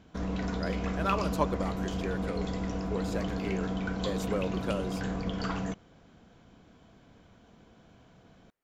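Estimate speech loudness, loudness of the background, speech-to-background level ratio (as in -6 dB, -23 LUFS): -36.5 LUFS, -33.5 LUFS, -3.0 dB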